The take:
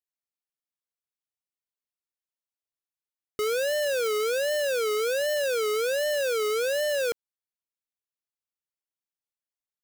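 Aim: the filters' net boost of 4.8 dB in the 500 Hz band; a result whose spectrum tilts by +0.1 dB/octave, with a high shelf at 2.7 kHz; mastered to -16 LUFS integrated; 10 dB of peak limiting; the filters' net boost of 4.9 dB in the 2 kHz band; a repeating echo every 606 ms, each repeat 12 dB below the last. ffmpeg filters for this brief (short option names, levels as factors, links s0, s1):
-af "equalizer=f=500:t=o:g=5,equalizer=f=2000:t=o:g=4,highshelf=f=2700:g=5,alimiter=level_in=1.41:limit=0.0631:level=0:latency=1,volume=0.708,aecho=1:1:606|1212|1818:0.251|0.0628|0.0157,volume=5.01"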